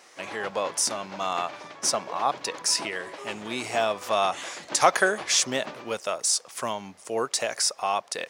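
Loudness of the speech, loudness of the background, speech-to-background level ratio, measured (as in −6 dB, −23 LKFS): −26.5 LKFS, −40.5 LKFS, 14.0 dB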